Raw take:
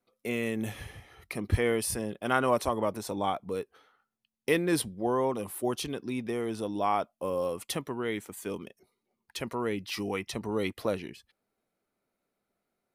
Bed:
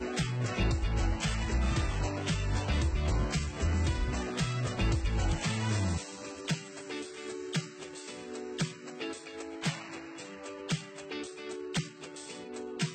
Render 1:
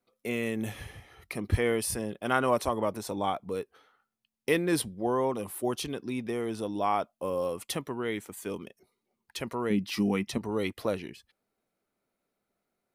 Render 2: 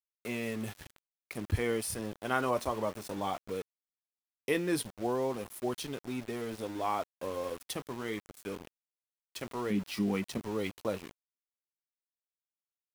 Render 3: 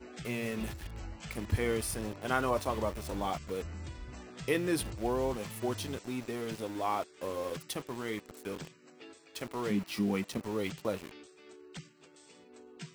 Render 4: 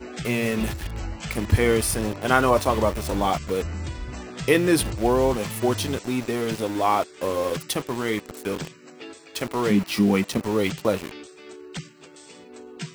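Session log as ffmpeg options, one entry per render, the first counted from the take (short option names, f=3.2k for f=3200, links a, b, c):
-filter_complex "[0:a]asettb=1/sr,asplit=3[a][b][c];[a]atrim=end=9.704[d];[b]atrim=start=9.7:end=10.38,asetpts=PTS-STARTPTS,afade=t=in:d=0.004:c=qsin,afade=t=out:st=0.676:d=0.004:c=qsin,equalizer=f=210:t=o:w=0.77:g=12[e];[c]atrim=start=10.376[f];[d][e]acrossfade=d=0.004:c1=hsin:c2=qsin[g];[g][f]acrossfade=d=0.004:c1=qsin:c2=hsin"
-af "flanger=delay=7.2:depth=3.8:regen=-67:speed=0.16:shape=sinusoidal,aeval=exprs='val(0)*gte(abs(val(0)),0.00794)':c=same"
-filter_complex "[1:a]volume=-13.5dB[a];[0:a][a]amix=inputs=2:normalize=0"
-af "volume=11.5dB"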